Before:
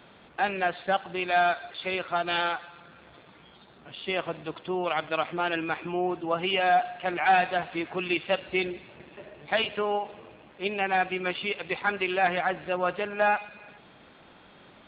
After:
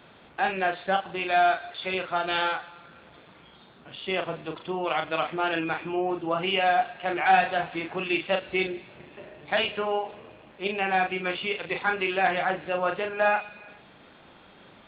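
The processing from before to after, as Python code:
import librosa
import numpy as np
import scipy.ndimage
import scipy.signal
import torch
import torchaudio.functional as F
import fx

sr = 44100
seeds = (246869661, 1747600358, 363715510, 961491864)

y = fx.doubler(x, sr, ms=37.0, db=-5.5)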